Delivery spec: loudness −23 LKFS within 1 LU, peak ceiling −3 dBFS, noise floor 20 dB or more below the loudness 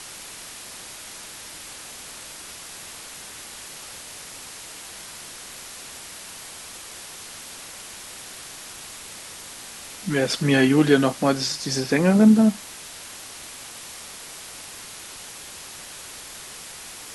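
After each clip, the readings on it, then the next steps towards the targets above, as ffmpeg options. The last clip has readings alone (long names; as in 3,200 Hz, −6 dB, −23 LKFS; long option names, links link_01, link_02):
background noise floor −40 dBFS; target noise floor −47 dBFS; integrated loudness −26.5 LKFS; sample peak −4.0 dBFS; target loudness −23.0 LKFS
→ -af "afftdn=noise_reduction=7:noise_floor=-40"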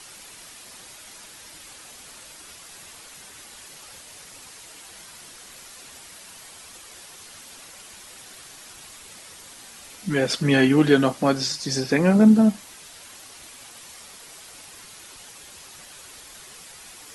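background noise floor −45 dBFS; integrated loudness −19.5 LKFS; sample peak −4.0 dBFS; target loudness −23.0 LKFS
→ -af "volume=-3.5dB"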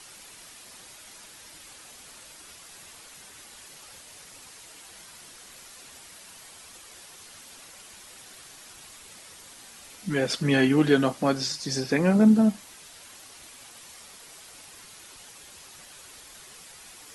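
integrated loudness −23.0 LKFS; sample peak −7.5 dBFS; background noise floor −48 dBFS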